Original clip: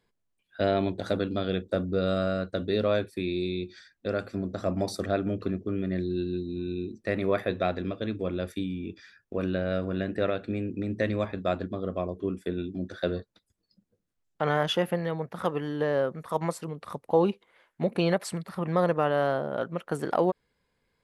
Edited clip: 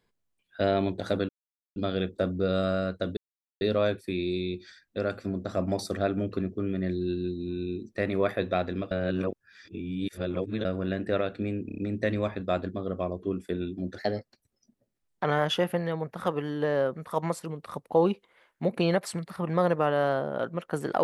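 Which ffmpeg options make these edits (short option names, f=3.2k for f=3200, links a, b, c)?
-filter_complex "[0:a]asplit=11[a][b][c][d][e][f][g][h][i][j][k];[a]atrim=end=1.29,asetpts=PTS-STARTPTS,afade=t=out:st=1.286:d=0.004:c=hsin,apad=pad_dur=0.47[l];[b]atrim=start=1.29:end=2.7,asetpts=PTS-STARTPTS,afade=t=in:d=0.004:c=hsin,afade=t=out:st=1.406:d=0.004:c=hsin,apad=pad_dur=0.44[m];[c]atrim=start=2.7:end=8.002,asetpts=PTS-STARTPTS,afade=t=in:d=0.004:c=hsin[n];[d]atrim=start=7.998:end=9.742,asetpts=PTS-STARTPTS,areverse[o];[e]atrim=start=9.738:end=10.782[p];[f]atrim=start=10.748:end=10.782[q];[g]atrim=start=10.748:end=10.782[r];[h]atrim=start=10.748:end=10.782[s];[i]atrim=start=10.748:end=12.954[t];[j]atrim=start=12.95:end=14.43,asetpts=PTS-STARTPTS,asetrate=51597,aresample=44100[u];[k]atrim=start=14.426[v];[l][m][n]concat=n=3:v=0:a=1[w];[w][o]acrossfade=d=0.004:c1=hsin:c2=hsin[x];[x][p]acrossfade=d=0.004:c1=hsin:c2=hsin[y];[y][q]acrossfade=d=0.004:c1=hsin:c2=hsin[z];[z][r]acrossfade=d=0.004:c1=hsin:c2=hsin[aa];[aa][s]acrossfade=d=0.004:c1=hsin:c2=hsin[ab];[ab][t]acrossfade=d=0.004:c1=hsin:c2=hsin[ac];[ac][u]acrossfade=d=0.004:c1=hsin:c2=hsin[ad];[ad][v]acrossfade=d=0.004:c1=hsin:c2=hsin"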